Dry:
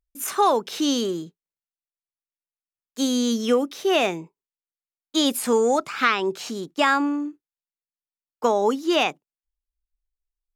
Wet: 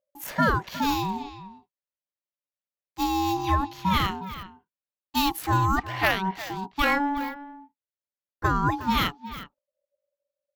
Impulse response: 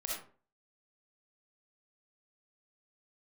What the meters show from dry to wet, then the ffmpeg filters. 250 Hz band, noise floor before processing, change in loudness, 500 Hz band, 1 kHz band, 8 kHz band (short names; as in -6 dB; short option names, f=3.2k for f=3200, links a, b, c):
-4.5 dB, under -85 dBFS, -3.5 dB, -12.0 dB, 0.0 dB, -9.5 dB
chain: -filter_complex "[0:a]adynamicsmooth=sensitivity=1.5:basefreq=4.5k,asplit=2[a][b];[b]adelay=360,highpass=300,lowpass=3.4k,asoftclip=type=hard:threshold=-16.5dB,volume=-12dB[c];[a][c]amix=inputs=2:normalize=0,aexciter=amount=14.9:drive=3.6:freq=12k,aeval=exprs='val(0)*sin(2*PI*570*n/s)':c=same"